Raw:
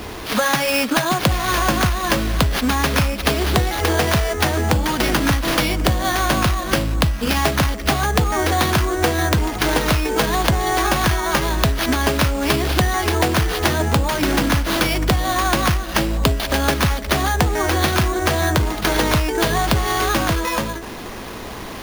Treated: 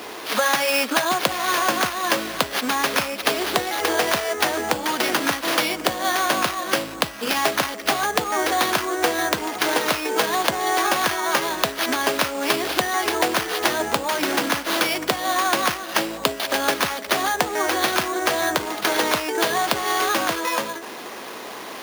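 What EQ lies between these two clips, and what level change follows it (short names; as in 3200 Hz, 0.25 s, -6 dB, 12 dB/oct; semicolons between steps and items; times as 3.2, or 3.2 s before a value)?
HPF 360 Hz 12 dB/oct; -1.0 dB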